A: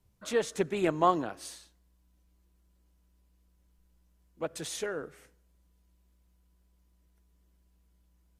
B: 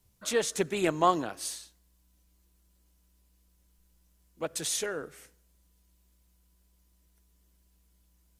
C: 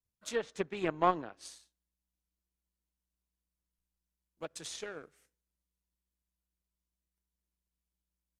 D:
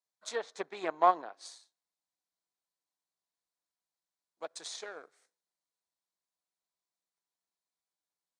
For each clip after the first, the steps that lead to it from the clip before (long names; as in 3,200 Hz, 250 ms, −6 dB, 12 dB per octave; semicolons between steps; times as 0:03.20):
high-shelf EQ 3,200 Hz +10 dB
power curve on the samples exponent 1.4; treble cut that deepens with the level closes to 2,400 Hz, closed at −29.5 dBFS; level −1.5 dB
loudspeaker in its box 450–9,400 Hz, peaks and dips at 720 Hz +6 dB, 1,000 Hz +4 dB, 2,800 Hz −8 dB, 4,100 Hz +5 dB